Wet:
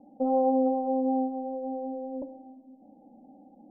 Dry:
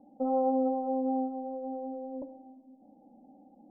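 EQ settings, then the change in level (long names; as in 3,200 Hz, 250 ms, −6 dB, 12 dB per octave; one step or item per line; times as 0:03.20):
low-pass filter 1,000 Hz 24 dB per octave
+3.5 dB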